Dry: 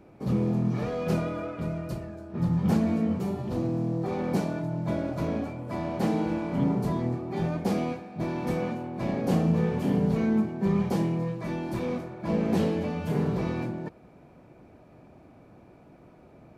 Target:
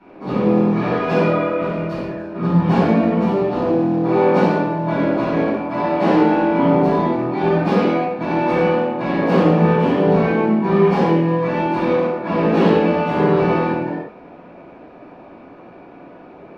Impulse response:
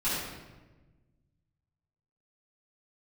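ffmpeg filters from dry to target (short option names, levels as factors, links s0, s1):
-filter_complex "[0:a]acrossover=split=280 4200:gain=0.141 1 0.0708[s0][s1][s2];[s0][s1][s2]amix=inputs=3:normalize=0[s3];[1:a]atrim=start_sample=2205,afade=t=out:st=0.26:d=0.01,atrim=end_sample=11907[s4];[s3][s4]afir=irnorm=-1:irlink=0,volume=2.11"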